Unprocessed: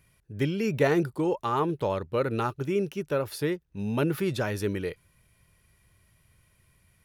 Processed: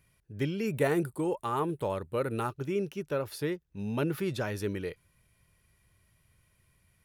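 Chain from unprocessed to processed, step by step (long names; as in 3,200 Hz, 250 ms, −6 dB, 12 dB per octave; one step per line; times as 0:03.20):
0:00.66–0:02.49: high shelf with overshoot 7,100 Hz +6.5 dB, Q 3
level −4 dB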